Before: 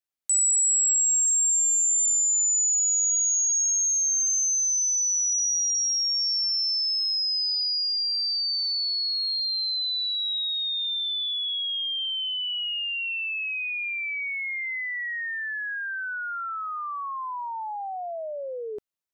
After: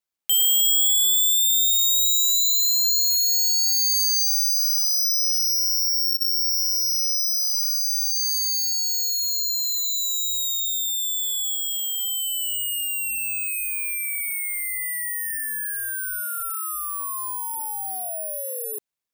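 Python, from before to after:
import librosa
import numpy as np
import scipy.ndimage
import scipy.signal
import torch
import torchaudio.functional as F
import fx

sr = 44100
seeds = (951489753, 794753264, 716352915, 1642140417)

y = fx.lowpass(x, sr, hz=4600.0, slope=12, at=(11.55, 12.0))
y = (np.kron(y[::4], np.eye(4)[0]) * 4)[:len(y)]
y = y * librosa.db_to_amplitude(-3.0)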